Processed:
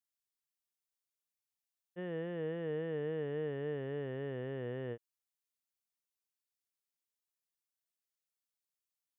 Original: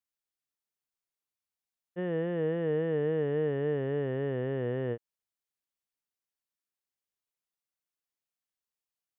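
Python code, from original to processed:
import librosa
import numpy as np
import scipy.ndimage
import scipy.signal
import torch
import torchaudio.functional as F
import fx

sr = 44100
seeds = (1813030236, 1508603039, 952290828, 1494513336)

y = fx.high_shelf(x, sr, hz=2700.0, db=8.5)
y = y * 10.0 ** (-8.5 / 20.0)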